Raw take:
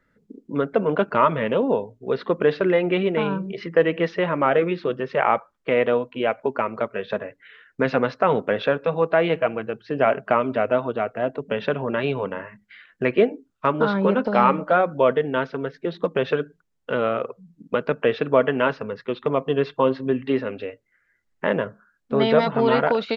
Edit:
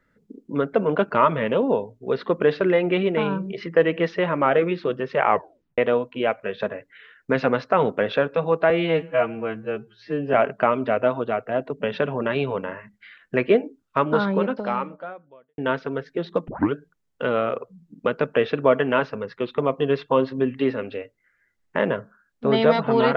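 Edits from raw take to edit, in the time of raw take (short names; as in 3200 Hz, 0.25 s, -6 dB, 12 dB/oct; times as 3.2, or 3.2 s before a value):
5.29 tape stop 0.49 s
6.43–6.93 cut
9.2–10.02 stretch 2×
13.9–15.26 fade out quadratic
16.16 tape start 0.25 s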